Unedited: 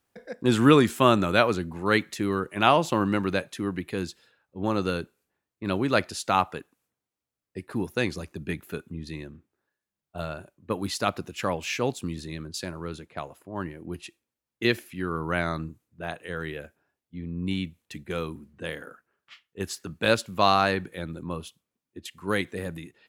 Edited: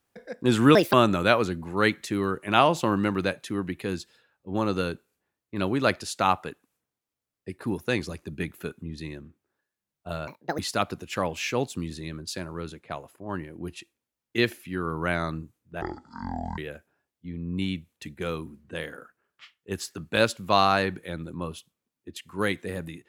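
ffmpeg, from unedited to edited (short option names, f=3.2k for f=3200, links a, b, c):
-filter_complex "[0:a]asplit=7[a][b][c][d][e][f][g];[a]atrim=end=0.754[h];[b]atrim=start=0.75:end=1.02,asetpts=PTS-STARTPTS,asetrate=65268,aresample=44100,atrim=end_sample=8045,asetpts=PTS-STARTPTS[i];[c]atrim=start=1.016:end=10.364[j];[d]atrim=start=10.36:end=10.85,asetpts=PTS-STARTPTS,asetrate=69237,aresample=44100[k];[e]atrim=start=10.846:end=16.084[l];[f]atrim=start=16.08:end=16.47,asetpts=PTS-STARTPTS,asetrate=22491,aresample=44100[m];[g]atrim=start=16.466[n];[h][i]acrossfade=d=0.004:c1=hsin:c2=hsin[o];[o][j]acrossfade=d=0.004:c1=hsin:c2=hsin[p];[p][k]acrossfade=d=0.004:c1=hsin:c2=hsin[q];[q][l]acrossfade=d=0.004:c1=hsin:c2=hsin[r];[r][m]acrossfade=d=0.004:c1=hsin:c2=hsin[s];[s][n]acrossfade=d=0.004:c1=hsin:c2=hsin"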